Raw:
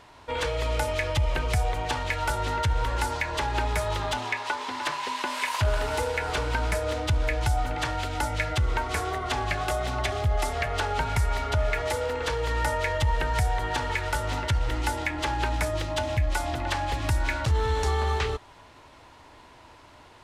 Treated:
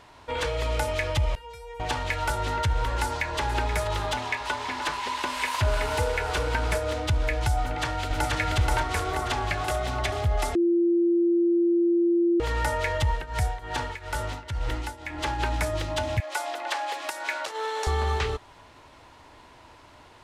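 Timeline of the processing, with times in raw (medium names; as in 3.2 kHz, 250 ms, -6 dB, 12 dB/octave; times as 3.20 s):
1.35–1.80 s: feedback comb 470 Hz, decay 0.28 s, mix 100%
2.96–3.39 s: echo throw 480 ms, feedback 75%, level -12 dB
4.12–6.78 s: delay 373 ms -7.5 dB
7.62–8.34 s: echo throw 480 ms, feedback 55%, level -0.5 dB
10.55–12.40 s: bleep 343 Hz -18.5 dBFS
13.07–15.38 s: tremolo triangle 3.3 Hz -> 1.5 Hz, depth 85%
16.20–17.87 s: high-pass 430 Hz 24 dB/octave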